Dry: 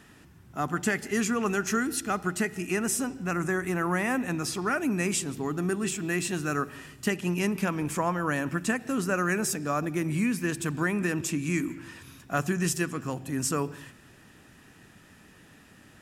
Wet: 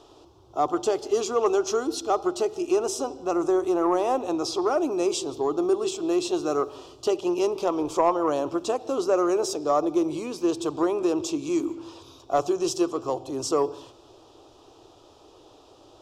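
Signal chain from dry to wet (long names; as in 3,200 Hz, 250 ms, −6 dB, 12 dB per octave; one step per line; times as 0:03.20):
drawn EQ curve 110 Hz 0 dB, 200 Hz −21 dB, 340 Hz +6 dB, 780 Hz +5 dB, 1,200 Hz −1 dB, 1,800 Hz −28 dB, 3,400 Hz 0 dB, 5,700 Hz −2 dB, 10,000 Hz −18 dB
soft clipping −13.5 dBFS, distortion −27 dB
parametric band 85 Hz −9 dB 2.6 octaves
level +5.5 dB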